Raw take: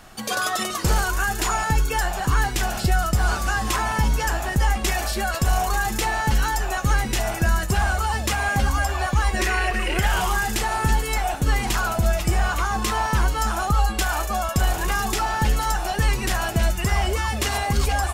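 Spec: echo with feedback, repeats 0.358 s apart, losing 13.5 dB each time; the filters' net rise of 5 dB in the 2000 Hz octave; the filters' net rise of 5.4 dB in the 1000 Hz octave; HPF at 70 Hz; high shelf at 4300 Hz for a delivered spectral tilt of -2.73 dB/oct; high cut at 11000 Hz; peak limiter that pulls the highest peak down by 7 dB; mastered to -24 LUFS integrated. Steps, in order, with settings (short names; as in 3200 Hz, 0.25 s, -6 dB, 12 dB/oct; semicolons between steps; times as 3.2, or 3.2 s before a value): HPF 70 Hz; LPF 11000 Hz; bell 1000 Hz +6 dB; bell 2000 Hz +3 dB; high shelf 4300 Hz +6.5 dB; limiter -12.5 dBFS; feedback echo 0.358 s, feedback 21%, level -13.5 dB; gain -2.5 dB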